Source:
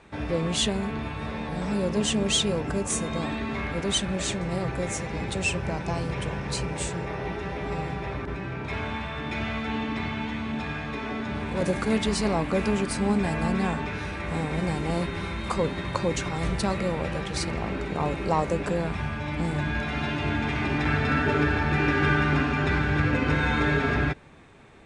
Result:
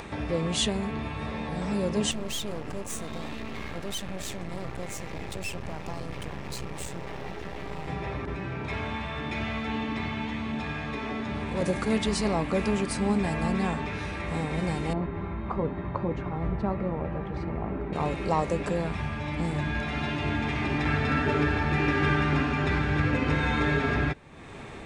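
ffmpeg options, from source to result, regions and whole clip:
ffmpeg -i in.wav -filter_complex "[0:a]asettb=1/sr,asplit=3[link_01][link_02][link_03];[link_01]atrim=end=2.114[link_04];[link_02]atrim=start=2.11:end=7.88,asetpts=PTS-STARTPTS,afade=type=in:duration=0.004:curve=qsin,afade=type=out:start_time=5.766:duration=0.004:curve=qsin,aeval=exprs='max(val(0),0)':channel_layout=same,aeval=exprs='(tanh(7.08*val(0)+0.3)-tanh(0.3))/7.08':channel_layout=same[link_05];[link_03]atrim=start=7.876[link_06];[link_04][link_05]acrossfade=duration=0.004:curve1=hsin:curve2=qsin[link_07];[link_07][link_06]acrossfade=duration=0.004:curve1=qsin:curve2=hsin,asettb=1/sr,asplit=3[link_08][link_09][link_10];[link_08]atrim=end=14.934[link_11];[link_09]atrim=start=14.93:end=17.93,asetpts=PTS-STARTPTS,afade=type=in:duration=0.004:curve=qsin,afade=type=out:start_time=2.996:duration=0.004:curve=qsin,lowpass=1200,bandreject=frequency=520:width=11[link_12];[link_10]atrim=start=17.926[link_13];[link_11][link_12]acrossfade=duration=0.004:curve1=hsin:curve2=qsin[link_14];[link_14][link_13]acrossfade=duration=0.004:curve1=qsin:curve2=hsin,bandreject=frequency=1500:width=19,acompressor=mode=upward:threshold=-28dB:ratio=2.5,volume=-1.5dB" out.wav

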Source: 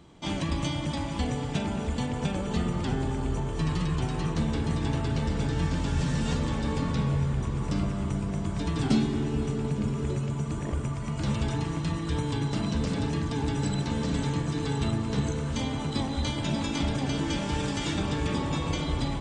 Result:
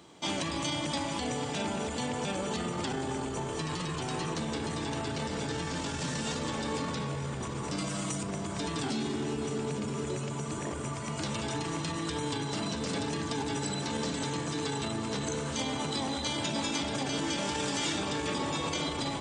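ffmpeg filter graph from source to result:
ffmpeg -i in.wav -filter_complex "[0:a]asettb=1/sr,asplit=3[link_01][link_02][link_03];[link_01]atrim=end=7.784[link_04];[link_02]atrim=start=7.78:end=8.23,asetpts=PTS-STARTPTS,afade=type=in:duration=0.004:curve=qsin,afade=type=out:start_time=0.446:duration=0.004:curve=qsin,highshelf=frequency=3900:gain=11,aecho=1:1:6.3:0.73,atrim=end_sample=19845[link_05];[link_03]atrim=start=8.226[link_06];[link_04][link_05]acrossfade=duration=0.004:curve1=hsin:curve2=qsin[link_07];[link_07][link_06]acrossfade=duration=0.004:curve1=qsin:curve2=hsin,alimiter=limit=-23.5dB:level=0:latency=1:release=18,highpass=92,bass=frequency=250:gain=-9,treble=frequency=4000:gain=5,volume=2.5dB" out.wav

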